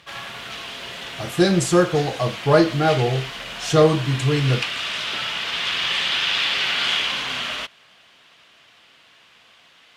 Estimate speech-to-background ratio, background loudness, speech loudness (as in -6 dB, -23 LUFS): 5.0 dB, -24.5 LUFS, -19.5 LUFS